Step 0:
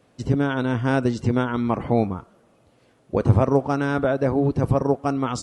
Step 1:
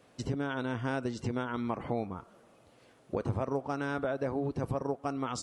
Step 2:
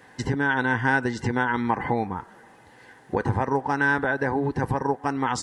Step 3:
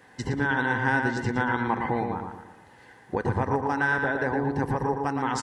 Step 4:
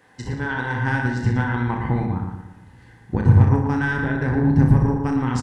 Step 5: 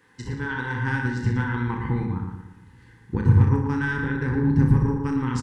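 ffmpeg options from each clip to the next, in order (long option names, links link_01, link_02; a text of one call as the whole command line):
ffmpeg -i in.wav -af "lowshelf=frequency=320:gain=-6,acompressor=threshold=-34dB:ratio=2.5" out.wav
ffmpeg -i in.wav -af "superequalizer=8b=0.562:9b=2.51:11b=3.98,volume=7.5dB" out.wav
ffmpeg -i in.wav -filter_complex "[0:a]asplit=2[link_01][link_02];[link_02]adelay=115,lowpass=frequency=4100:poles=1,volume=-4.5dB,asplit=2[link_03][link_04];[link_04]adelay=115,lowpass=frequency=4100:poles=1,volume=0.44,asplit=2[link_05][link_06];[link_06]adelay=115,lowpass=frequency=4100:poles=1,volume=0.44,asplit=2[link_07][link_08];[link_08]adelay=115,lowpass=frequency=4100:poles=1,volume=0.44,asplit=2[link_09][link_10];[link_10]adelay=115,lowpass=frequency=4100:poles=1,volume=0.44[link_11];[link_01][link_03][link_05][link_07][link_09][link_11]amix=inputs=6:normalize=0,volume=-3dB" out.wav
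ffmpeg -i in.wav -af "asubboost=boost=10:cutoff=190,aeval=exprs='0.668*(cos(1*acos(clip(val(0)/0.668,-1,1)))-cos(1*PI/2))+0.0211*(cos(7*acos(clip(val(0)/0.668,-1,1)))-cos(7*PI/2))':channel_layout=same,aecho=1:1:33|61:0.473|0.422" out.wav
ffmpeg -i in.wav -af "asuperstop=centerf=660:order=4:qfactor=1.9,volume=-3dB" out.wav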